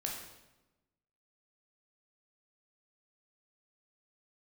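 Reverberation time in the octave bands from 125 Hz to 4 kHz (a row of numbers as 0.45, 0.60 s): 1.3, 1.3, 1.1, 0.95, 0.85, 0.80 s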